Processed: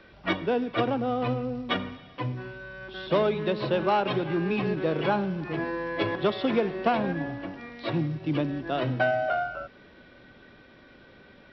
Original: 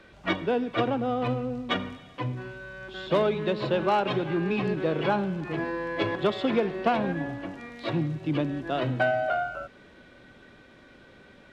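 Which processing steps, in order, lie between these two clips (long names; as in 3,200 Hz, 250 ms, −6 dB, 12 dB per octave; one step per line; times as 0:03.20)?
floating-point word with a short mantissa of 4 bits
linear-phase brick-wall low-pass 5,800 Hz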